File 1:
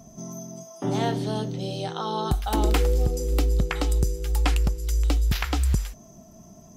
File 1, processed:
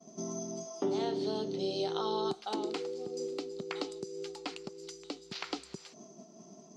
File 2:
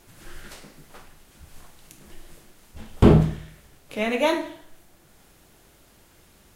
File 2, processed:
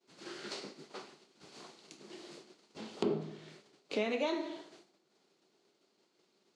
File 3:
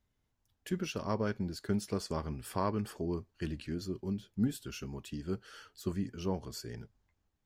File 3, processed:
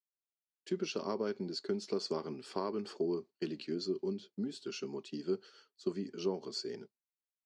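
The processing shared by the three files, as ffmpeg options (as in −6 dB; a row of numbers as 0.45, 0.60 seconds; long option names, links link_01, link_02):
-af "agate=range=-33dB:threshold=-43dB:ratio=3:detection=peak,acompressor=threshold=-33dB:ratio=5,highpass=frequency=190:width=0.5412,highpass=frequency=190:width=1.3066,equalizer=frequency=390:width_type=q:width=4:gain=9,equalizer=frequency=1700:width_type=q:width=4:gain=-5,equalizer=frequency=4400:width_type=q:width=4:gain=8,lowpass=frequency=7000:width=0.5412,lowpass=frequency=7000:width=1.3066"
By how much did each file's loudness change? −11.0, −18.0, −1.5 LU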